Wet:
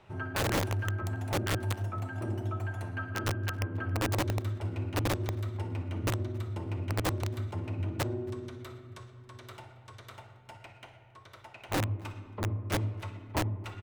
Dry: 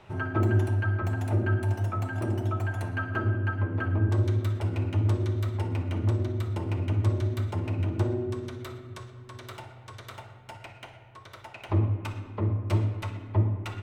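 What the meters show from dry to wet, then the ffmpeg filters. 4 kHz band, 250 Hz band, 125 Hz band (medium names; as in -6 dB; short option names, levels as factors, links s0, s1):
+5.5 dB, -4.5 dB, -7.0 dB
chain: -filter_complex "[0:a]aeval=exprs='(mod(8.41*val(0)+1,2)-1)/8.41':c=same,asplit=2[s0][s1];[s1]adelay=274.1,volume=0.0631,highshelf=f=4000:g=-6.17[s2];[s0][s2]amix=inputs=2:normalize=0,volume=0.531"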